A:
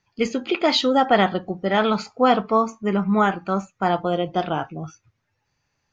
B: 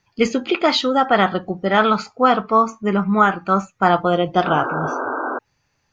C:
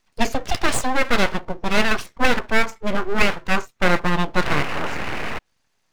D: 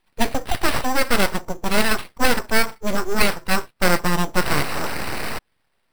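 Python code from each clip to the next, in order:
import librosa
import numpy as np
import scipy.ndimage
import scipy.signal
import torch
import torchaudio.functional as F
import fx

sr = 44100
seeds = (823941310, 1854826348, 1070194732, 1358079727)

y1 = fx.dynamic_eq(x, sr, hz=1300.0, q=2.2, threshold_db=-36.0, ratio=4.0, max_db=7)
y1 = fx.rider(y1, sr, range_db=3, speed_s=0.5)
y1 = fx.spec_paint(y1, sr, seeds[0], shape='noise', start_s=4.45, length_s=0.94, low_hz=240.0, high_hz=1600.0, level_db=-26.0)
y1 = y1 * librosa.db_to_amplitude(2.0)
y2 = np.abs(y1)
y3 = fx.sample_hold(y2, sr, seeds[1], rate_hz=6700.0, jitter_pct=0)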